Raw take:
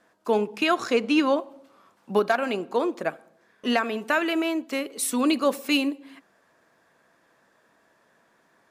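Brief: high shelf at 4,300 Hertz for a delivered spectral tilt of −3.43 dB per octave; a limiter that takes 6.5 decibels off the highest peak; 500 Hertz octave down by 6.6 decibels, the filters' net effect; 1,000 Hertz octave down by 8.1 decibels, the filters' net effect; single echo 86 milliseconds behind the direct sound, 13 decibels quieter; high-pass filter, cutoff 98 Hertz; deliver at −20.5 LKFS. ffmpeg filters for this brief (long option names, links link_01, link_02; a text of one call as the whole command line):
ffmpeg -i in.wav -af "highpass=98,equalizer=frequency=500:width_type=o:gain=-6,equalizer=frequency=1000:width_type=o:gain=-8.5,highshelf=frequency=4300:gain=-5,alimiter=limit=-18.5dB:level=0:latency=1,aecho=1:1:86:0.224,volume=9.5dB" out.wav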